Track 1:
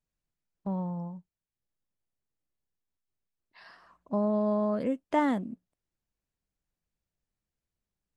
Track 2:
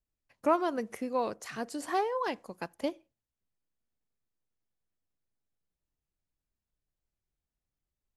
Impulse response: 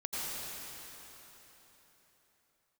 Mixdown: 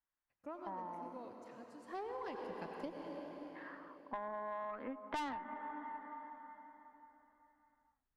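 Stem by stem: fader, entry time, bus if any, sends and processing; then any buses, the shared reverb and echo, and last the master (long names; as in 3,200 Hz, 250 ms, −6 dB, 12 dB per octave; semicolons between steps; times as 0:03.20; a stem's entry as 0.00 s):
−1.5 dB, 0.00 s, send −20.5 dB, elliptic band-pass filter 260–3,500 Hz; flat-topped bell 1,300 Hz +14 dB; expander for the loud parts 1.5 to 1, over −30 dBFS
0:01.81 −23.5 dB → 0:02.03 −10.5 dB, 0.00 s, send −3 dB, high-shelf EQ 6,600 Hz −11 dB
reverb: on, RT60 4.0 s, pre-delay 78 ms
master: low-shelf EQ 360 Hz +5.5 dB; tube saturation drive 23 dB, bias 0.45; downward compressor 4 to 1, threshold −41 dBFS, peak gain reduction 14 dB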